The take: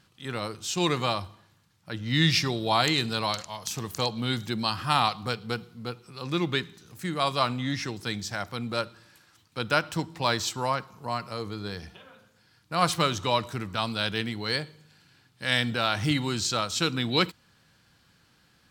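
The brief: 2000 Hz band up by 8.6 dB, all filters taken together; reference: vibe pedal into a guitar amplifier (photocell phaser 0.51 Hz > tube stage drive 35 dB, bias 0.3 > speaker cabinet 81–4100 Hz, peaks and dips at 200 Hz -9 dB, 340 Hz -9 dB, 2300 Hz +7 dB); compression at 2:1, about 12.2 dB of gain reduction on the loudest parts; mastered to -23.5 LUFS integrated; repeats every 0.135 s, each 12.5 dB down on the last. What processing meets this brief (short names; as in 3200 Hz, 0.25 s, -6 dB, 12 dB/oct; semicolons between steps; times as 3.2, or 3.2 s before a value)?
bell 2000 Hz +6.5 dB; compressor 2:1, threshold -39 dBFS; feedback echo 0.135 s, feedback 24%, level -12.5 dB; photocell phaser 0.51 Hz; tube stage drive 35 dB, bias 0.3; speaker cabinet 81–4100 Hz, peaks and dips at 200 Hz -9 dB, 340 Hz -9 dB, 2300 Hz +7 dB; gain +19 dB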